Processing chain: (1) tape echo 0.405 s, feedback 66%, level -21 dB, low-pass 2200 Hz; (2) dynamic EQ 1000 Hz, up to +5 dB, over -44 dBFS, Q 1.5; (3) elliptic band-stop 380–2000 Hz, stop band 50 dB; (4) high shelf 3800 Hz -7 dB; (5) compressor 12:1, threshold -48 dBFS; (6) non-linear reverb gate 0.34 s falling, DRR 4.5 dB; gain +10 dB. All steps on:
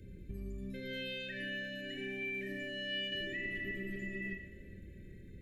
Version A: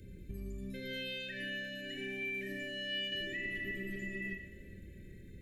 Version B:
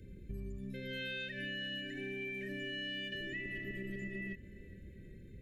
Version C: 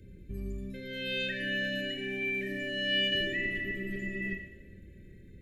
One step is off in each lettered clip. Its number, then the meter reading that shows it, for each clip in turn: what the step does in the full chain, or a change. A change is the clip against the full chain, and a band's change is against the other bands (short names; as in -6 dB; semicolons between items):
4, 4 kHz band +1.5 dB; 6, momentary loudness spread change -1 LU; 5, mean gain reduction 4.5 dB